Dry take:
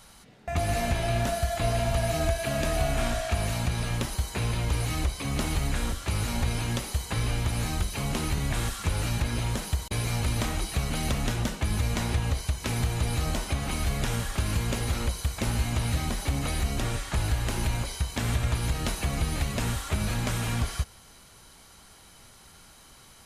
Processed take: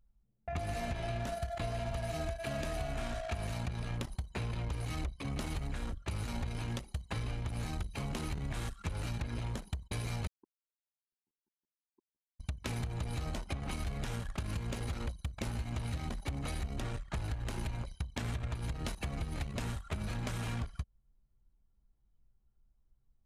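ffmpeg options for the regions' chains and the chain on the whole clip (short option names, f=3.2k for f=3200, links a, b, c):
-filter_complex "[0:a]asettb=1/sr,asplit=3[a][b][c];[a]atrim=end=10.274[d];[b]atrim=start=10.27:end=12.4,asetpts=PTS-STARTPTS,afade=t=in:d=0.004:c=qsin,afade=t=out:st=2.126:d=0.004:c=qsin,asuperpass=centerf=320:order=20:qfactor=2.8,acrusher=bits=4:mix=0:aa=0.5[e];[c]atrim=start=12.396[f];[d][e]acrossfade=d=0.004:c1=hsin:c2=qsin[g];[g][f]acrossfade=d=0.004:c1=qsin:c2=hsin,anlmdn=15.8,acompressor=threshold=-28dB:ratio=6,volume=-5dB"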